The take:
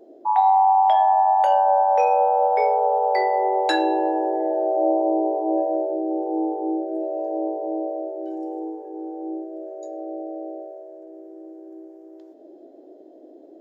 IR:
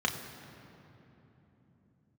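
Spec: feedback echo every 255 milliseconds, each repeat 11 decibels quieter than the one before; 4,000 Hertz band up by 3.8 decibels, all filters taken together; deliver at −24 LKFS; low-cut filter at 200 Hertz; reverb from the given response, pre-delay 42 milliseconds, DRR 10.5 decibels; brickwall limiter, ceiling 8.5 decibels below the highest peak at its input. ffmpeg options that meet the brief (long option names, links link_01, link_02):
-filter_complex "[0:a]highpass=200,equalizer=frequency=4000:width_type=o:gain=4,alimiter=limit=-15.5dB:level=0:latency=1,aecho=1:1:255|510|765:0.282|0.0789|0.0221,asplit=2[link_01][link_02];[1:a]atrim=start_sample=2205,adelay=42[link_03];[link_02][link_03]afir=irnorm=-1:irlink=0,volume=-19dB[link_04];[link_01][link_04]amix=inputs=2:normalize=0,volume=0.5dB"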